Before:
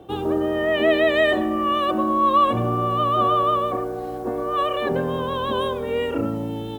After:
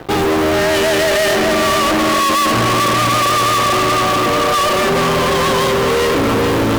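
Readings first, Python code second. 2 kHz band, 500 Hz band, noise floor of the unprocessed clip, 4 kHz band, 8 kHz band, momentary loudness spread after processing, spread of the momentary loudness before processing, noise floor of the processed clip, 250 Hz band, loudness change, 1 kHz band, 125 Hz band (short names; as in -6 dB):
+10.5 dB, +6.5 dB, -30 dBFS, +13.5 dB, n/a, 1 LU, 8 LU, -15 dBFS, +6.5 dB, +7.5 dB, +6.5 dB, +8.5 dB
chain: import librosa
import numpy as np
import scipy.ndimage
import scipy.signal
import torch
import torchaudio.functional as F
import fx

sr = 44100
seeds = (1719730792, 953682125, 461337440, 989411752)

y = fx.echo_filtered(x, sr, ms=434, feedback_pct=63, hz=3400.0, wet_db=-5.0)
y = fx.fuzz(y, sr, gain_db=40.0, gate_db=-44.0)
y = fx.upward_expand(y, sr, threshold_db=-26.0, expansion=1.5)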